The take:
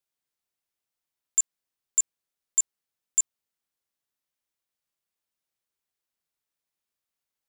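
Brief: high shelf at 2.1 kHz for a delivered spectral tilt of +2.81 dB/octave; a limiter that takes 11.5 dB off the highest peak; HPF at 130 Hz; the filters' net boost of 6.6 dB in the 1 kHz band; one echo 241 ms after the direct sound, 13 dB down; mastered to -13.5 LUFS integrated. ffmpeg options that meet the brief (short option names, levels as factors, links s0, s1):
-af "highpass=130,equalizer=f=1000:t=o:g=6.5,highshelf=f=2100:g=7,alimiter=limit=0.106:level=0:latency=1,aecho=1:1:241:0.224,volume=8.91"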